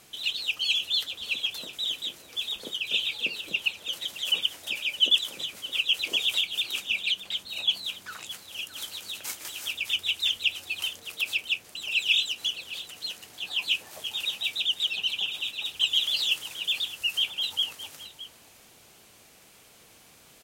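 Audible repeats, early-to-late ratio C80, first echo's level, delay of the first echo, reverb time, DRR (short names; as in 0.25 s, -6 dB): 1, none, -15.0 dB, 0.617 s, none, none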